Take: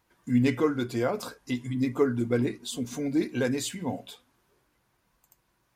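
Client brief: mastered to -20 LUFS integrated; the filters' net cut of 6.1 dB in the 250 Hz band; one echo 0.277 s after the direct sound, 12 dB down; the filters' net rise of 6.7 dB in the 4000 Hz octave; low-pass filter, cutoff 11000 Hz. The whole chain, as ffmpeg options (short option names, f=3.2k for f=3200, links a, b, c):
-af "lowpass=11k,equalizer=f=250:t=o:g=-7,equalizer=f=4k:t=o:g=8,aecho=1:1:277:0.251,volume=11dB"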